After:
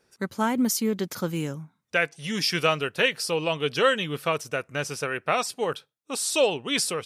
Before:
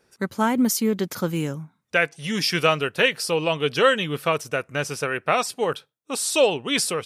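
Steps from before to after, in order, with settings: peaking EQ 5.4 kHz +2 dB 1.5 oct; trim -3.5 dB

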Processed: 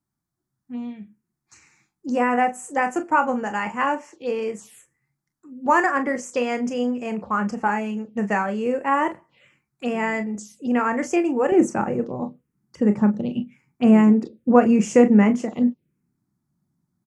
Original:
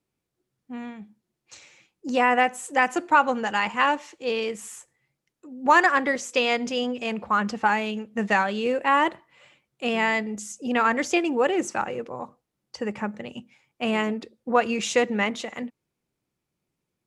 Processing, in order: early reflections 29 ms -11 dB, 41 ms -12 dB; touch-sensitive phaser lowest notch 470 Hz, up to 3.8 kHz, full sweep at -25.5 dBFS; peaking EQ 190 Hz +4 dB 2.4 oct, from 11.52 s +15 dB; trim -1 dB

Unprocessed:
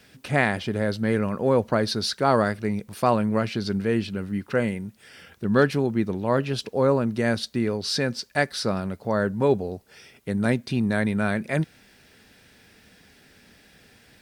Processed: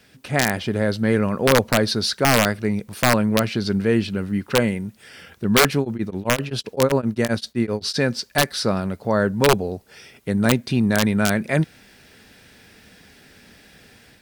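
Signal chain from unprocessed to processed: level rider gain up to 5 dB; integer overflow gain 7 dB; 5.79–8.00 s: tremolo of two beating tones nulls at 7.7 Hz

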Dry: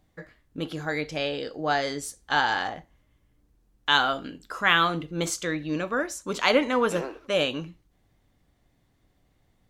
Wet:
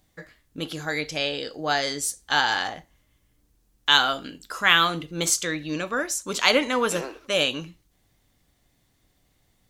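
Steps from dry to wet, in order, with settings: treble shelf 2.8 kHz +11.5 dB; trim -1 dB

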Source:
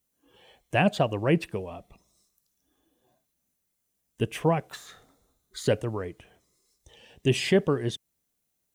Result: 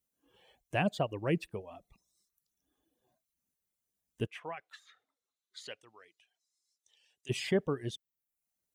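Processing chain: reverb removal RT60 0.59 s; 4.26–7.29 s: band-pass filter 1.8 kHz -> 7 kHz, Q 1; trim -7.5 dB

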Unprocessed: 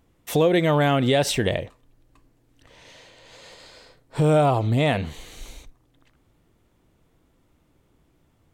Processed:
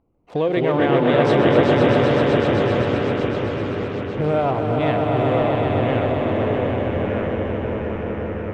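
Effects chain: local Wiener filter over 25 samples; low-pass 2.8 kHz 12 dB/octave; bass shelf 230 Hz -6.5 dB; on a send: echo with a slow build-up 128 ms, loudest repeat 5, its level -5 dB; on the sum: ever faster or slower copies 147 ms, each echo -3 st, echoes 2

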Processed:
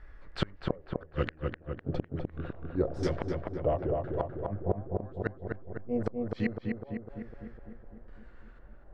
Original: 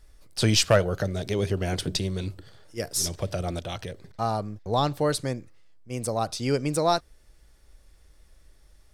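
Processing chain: sawtooth pitch modulation -4.5 st, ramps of 1437 ms; LFO low-pass square 0.99 Hz 700–1700 Hz; inverted gate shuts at -19 dBFS, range -37 dB; on a send: filtered feedback delay 252 ms, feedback 65%, low-pass 2 kHz, level -3 dB; on the sum: trim +4 dB

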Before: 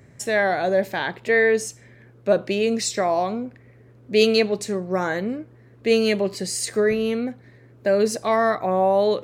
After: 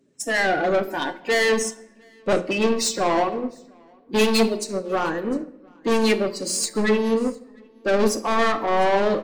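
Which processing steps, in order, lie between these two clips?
coarse spectral quantiser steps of 30 dB; resonant low shelf 150 Hz -12.5 dB, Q 1.5; hum notches 60/120/180/240/300/360/420/480/540 Hz; spectral noise reduction 10 dB; saturation -24 dBFS, distortion -6 dB; delay 704 ms -23.5 dB; on a send at -9 dB: reverberation RT60 1.2 s, pre-delay 7 ms; on the sum: upward expansion 1.5:1, over -43 dBFS; trim +8.5 dB

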